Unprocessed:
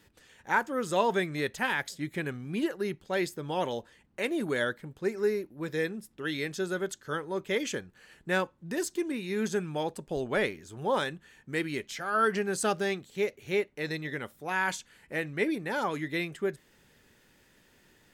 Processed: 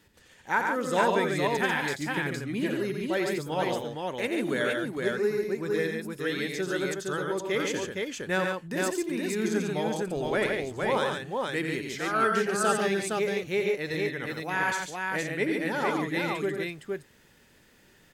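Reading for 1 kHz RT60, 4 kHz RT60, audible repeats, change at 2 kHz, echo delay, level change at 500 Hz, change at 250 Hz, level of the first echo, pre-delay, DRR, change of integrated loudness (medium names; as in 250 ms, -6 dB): no reverb, no reverb, 3, +3.0 dB, 87 ms, +3.0 dB, +3.0 dB, -6.5 dB, no reverb, no reverb, +3.0 dB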